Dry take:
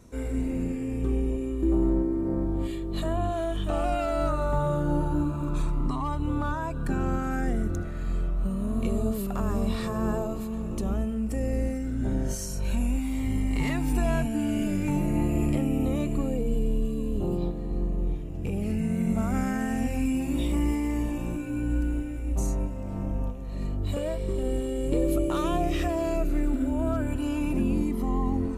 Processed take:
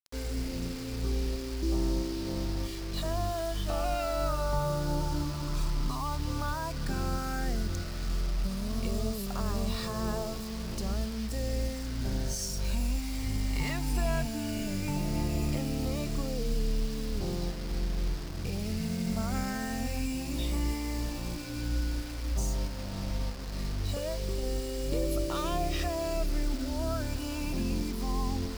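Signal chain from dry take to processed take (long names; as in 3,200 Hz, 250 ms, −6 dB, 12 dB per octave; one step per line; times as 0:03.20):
dynamic equaliser 290 Hz, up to −6 dB, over −39 dBFS, Q 1.3
bit reduction 7 bits
parametric band 4,900 Hz +10 dB 0.58 octaves
level −3 dB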